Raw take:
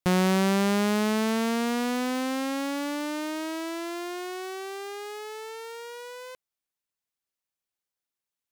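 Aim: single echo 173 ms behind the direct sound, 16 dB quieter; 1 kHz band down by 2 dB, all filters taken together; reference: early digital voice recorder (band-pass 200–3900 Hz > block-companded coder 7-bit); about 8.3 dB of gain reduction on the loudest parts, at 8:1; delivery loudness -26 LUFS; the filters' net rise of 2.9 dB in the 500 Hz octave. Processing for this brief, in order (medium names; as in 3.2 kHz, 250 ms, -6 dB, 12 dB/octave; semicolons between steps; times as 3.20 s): peaking EQ 500 Hz +5 dB; peaking EQ 1 kHz -4.5 dB; compression 8:1, threshold -28 dBFS; band-pass 200–3900 Hz; delay 173 ms -16 dB; block-companded coder 7-bit; trim +7.5 dB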